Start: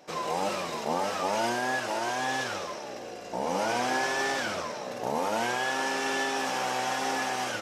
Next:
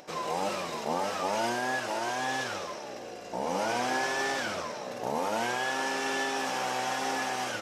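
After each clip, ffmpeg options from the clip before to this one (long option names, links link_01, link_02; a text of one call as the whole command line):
ffmpeg -i in.wav -af "acompressor=mode=upward:threshold=-45dB:ratio=2.5,volume=-1.5dB" out.wav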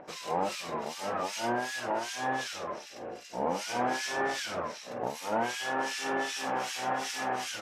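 ffmpeg -i in.wav -filter_complex "[0:a]acrossover=split=1900[link_01][link_02];[link_01]aeval=exprs='val(0)*(1-1/2+1/2*cos(2*PI*2.6*n/s))':channel_layout=same[link_03];[link_02]aeval=exprs='val(0)*(1-1/2-1/2*cos(2*PI*2.6*n/s))':channel_layout=same[link_04];[link_03][link_04]amix=inputs=2:normalize=0,volume=3dB" out.wav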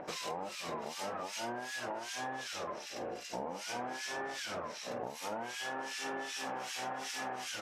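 ffmpeg -i in.wav -af "acompressor=threshold=-40dB:ratio=12,volume=3.5dB" out.wav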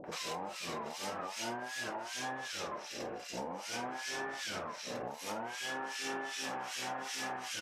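ffmpeg -i in.wav -filter_complex "[0:a]acrossover=split=590[link_01][link_02];[link_02]adelay=40[link_03];[link_01][link_03]amix=inputs=2:normalize=0,volume=1dB" out.wav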